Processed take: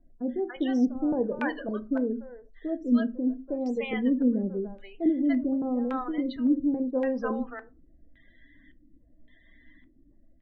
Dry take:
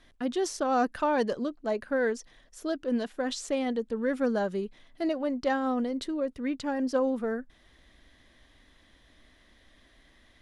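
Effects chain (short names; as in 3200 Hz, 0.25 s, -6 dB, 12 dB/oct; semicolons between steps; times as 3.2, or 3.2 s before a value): loudest bins only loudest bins 32; LFO low-pass square 0.89 Hz 300–2500 Hz; bands offset in time lows, highs 0.29 s, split 700 Hz; on a send at -9.5 dB: reverb RT60 0.30 s, pre-delay 4 ms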